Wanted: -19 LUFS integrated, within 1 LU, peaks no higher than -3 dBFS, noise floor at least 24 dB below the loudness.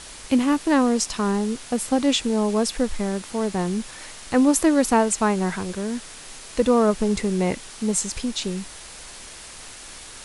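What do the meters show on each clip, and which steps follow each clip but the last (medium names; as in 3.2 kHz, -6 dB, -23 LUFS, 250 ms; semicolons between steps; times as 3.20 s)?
noise floor -41 dBFS; noise floor target -47 dBFS; loudness -22.5 LUFS; peak level -7.0 dBFS; loudness target -19.0 LUFS
-> noise print and reduce 6 dB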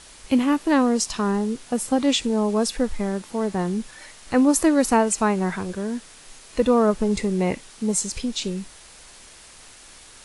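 noise floor -47 dBFS; loudness -22.5 LUFS; peak level -7.5 dBFS; loudness target -19.0 LUFS
-> trim +3.5 dB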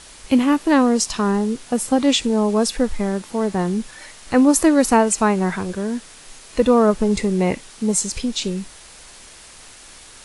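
loudness -19.0 LUFS; peak level -4.0 dBFS; noise floor -43 dBFS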